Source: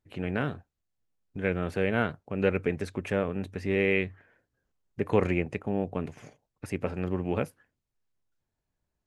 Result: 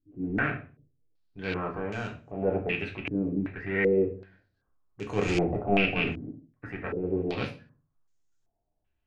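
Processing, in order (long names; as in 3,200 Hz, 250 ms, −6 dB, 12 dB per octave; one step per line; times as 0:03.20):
loose part that buzzes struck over −30 dBFS, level −23 dBFS
0:01.69–0:02.39: downward compressor 4 to 1, threshold −28 dBFS, peak gain reduction 7.5 dB
0:05.27–0:06.65: leveller curve on the samples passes 2
transient designer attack −8 dB, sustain 0 dB
convolution reverb RT60 0.35 s, pre-delay 3 ms, DRR −0.5 dB
low-pass on a step sequencer 2.6 Hz 290–6,800 Hz
level −4.5 dB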